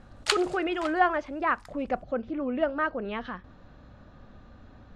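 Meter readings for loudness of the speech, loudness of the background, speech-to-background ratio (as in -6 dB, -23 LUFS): -29.0 LUFS, -33.0 LUFS, 4.0 dB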